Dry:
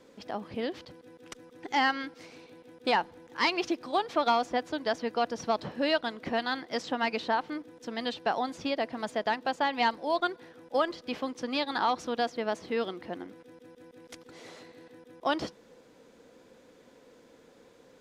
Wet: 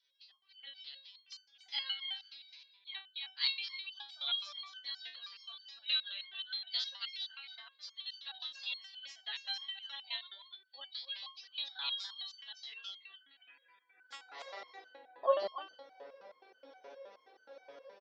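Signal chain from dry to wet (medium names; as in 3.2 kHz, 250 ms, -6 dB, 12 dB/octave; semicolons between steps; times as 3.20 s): knee-point frequency compression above 3.5 kHz 1.5:1; 10.95–11.85 s: peaking EQ 780 Hz +5.5 dB 2.3 oct; spectral gate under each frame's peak -30 dB strong; in parallel at -1 dB: compression, threshold -42 dBFS, peak gain reduction 20.5 dB; on the sum: high-pass sweep 3.8 kHz -> 600 Hz, 13.09–14.64 s; level rider gain up to 13 dB; on a send: delay 285 ms -6 dB; on the sum: resonator arpeggio 9.5 Hz 140–1500 Hz; trim -4 dB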